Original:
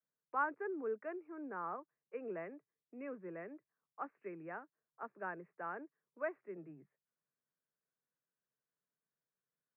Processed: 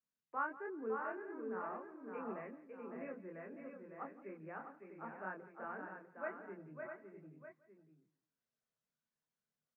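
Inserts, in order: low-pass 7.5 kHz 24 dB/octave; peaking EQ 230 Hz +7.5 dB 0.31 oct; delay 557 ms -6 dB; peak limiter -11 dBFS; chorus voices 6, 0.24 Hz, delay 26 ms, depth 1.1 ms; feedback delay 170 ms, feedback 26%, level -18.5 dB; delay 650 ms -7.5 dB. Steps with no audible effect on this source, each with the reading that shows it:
low-pass 7.5 kHz: input has nothing above 2.6 kHz; peak limiter -11 dBFS: peak at its input -22.5 dBFS

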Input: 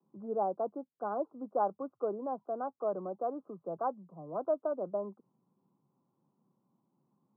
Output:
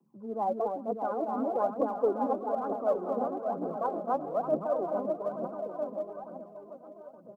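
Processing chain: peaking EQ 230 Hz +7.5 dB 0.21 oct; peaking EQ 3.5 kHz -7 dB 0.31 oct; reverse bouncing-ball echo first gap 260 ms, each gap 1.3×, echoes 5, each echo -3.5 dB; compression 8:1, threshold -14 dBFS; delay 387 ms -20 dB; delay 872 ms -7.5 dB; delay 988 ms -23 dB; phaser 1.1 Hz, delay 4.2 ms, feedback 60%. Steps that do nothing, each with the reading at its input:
peaking EQ 3.5 kHz: input has nothing above 1.5 kHz; compression, threshold -14 dBFS: peak at its input -18.5 dBFS

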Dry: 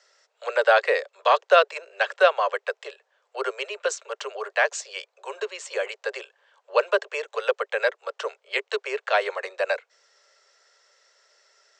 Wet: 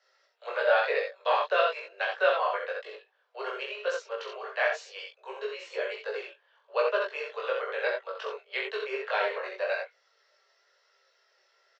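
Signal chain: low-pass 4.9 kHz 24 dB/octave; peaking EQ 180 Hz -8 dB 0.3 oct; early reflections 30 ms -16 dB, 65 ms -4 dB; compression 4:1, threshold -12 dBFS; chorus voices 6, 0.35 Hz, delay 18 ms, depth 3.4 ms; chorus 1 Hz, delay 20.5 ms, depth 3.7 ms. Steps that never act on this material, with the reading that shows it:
peaking EQ 180 Hz: input has nothing below 340 Hz

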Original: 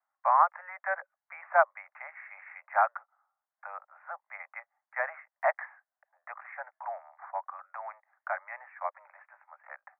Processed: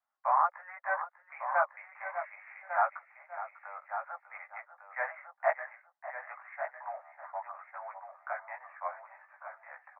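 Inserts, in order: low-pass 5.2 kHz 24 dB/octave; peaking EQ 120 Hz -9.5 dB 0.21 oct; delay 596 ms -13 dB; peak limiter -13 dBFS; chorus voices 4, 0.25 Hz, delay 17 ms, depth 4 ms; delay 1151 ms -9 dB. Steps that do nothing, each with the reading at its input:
low-pass 5.2 kHz: input has nothing above 2.4 kHz; peaking EQ 120 Hz: input has nothing below 480 Hz

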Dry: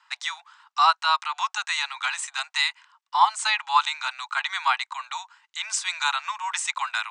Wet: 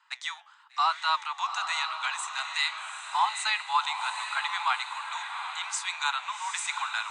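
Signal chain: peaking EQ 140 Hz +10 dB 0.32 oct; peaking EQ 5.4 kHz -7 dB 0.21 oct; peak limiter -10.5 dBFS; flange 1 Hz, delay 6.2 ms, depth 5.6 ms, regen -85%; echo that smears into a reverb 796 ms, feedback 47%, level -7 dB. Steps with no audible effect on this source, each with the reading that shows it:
peaking EQ 140 Hz: input has nothing below 640 Hz

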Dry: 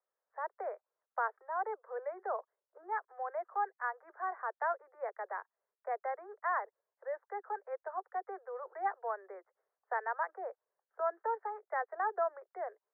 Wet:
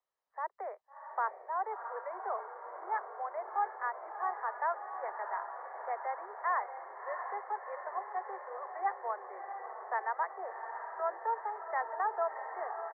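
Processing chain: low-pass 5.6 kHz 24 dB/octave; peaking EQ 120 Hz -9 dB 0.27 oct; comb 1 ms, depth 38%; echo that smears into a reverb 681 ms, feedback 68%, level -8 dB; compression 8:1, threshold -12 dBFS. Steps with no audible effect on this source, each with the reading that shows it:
low-pass 5.6 kHz: input has nothing above 2.2 kHz; peaking EQ 120 Hz: input has nothing below 320 Hz; compression, threshold -12 dBFS: peak at its input -21.5 dBFS

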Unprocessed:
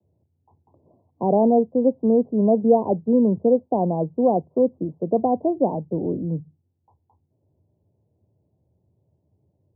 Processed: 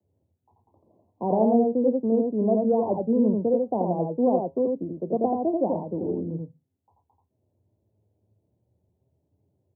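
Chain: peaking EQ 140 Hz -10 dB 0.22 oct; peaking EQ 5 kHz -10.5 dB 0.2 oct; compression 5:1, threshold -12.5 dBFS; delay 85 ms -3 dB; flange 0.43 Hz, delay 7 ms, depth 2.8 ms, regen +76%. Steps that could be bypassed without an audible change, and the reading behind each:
peaking EQ 5 kHz: input has nothing above 1 kHz

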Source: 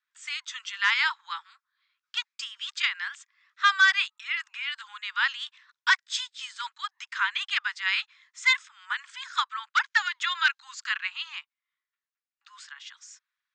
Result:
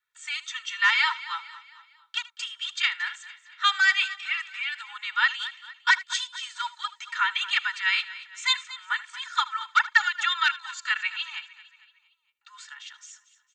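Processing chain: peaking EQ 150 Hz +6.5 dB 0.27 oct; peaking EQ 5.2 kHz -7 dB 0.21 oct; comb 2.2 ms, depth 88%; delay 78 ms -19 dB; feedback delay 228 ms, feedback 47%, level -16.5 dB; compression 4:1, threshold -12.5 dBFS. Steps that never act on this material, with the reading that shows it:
peaking EQ 150 Hz: input has nothing below 760 Hz

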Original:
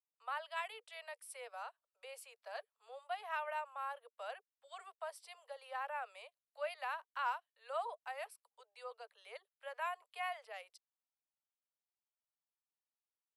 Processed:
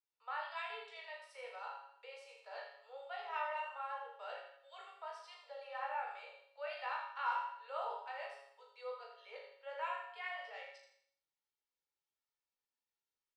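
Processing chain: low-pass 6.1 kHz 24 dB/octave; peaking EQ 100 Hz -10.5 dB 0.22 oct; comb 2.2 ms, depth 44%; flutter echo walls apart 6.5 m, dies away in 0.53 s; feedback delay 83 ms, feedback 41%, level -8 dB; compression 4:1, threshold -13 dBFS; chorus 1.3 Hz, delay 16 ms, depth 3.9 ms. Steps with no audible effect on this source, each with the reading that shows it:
peaking EQ 100 Hz: input has nothing below 400 Hz; compression, threshold -13 dBFS: peak at its input -22.0 dBFS

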